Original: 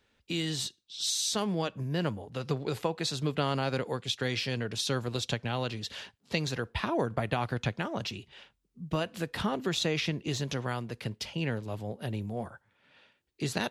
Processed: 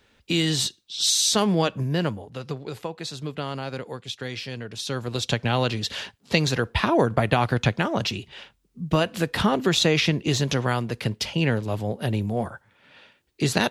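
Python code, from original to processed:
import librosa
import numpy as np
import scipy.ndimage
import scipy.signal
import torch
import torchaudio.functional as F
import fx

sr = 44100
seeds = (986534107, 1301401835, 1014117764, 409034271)

y = fx.gain(x, sr, db=fx.line((1.74, 9.5), (2.6, -1.5), (4.73, -1.5), (5.46, 9.5)))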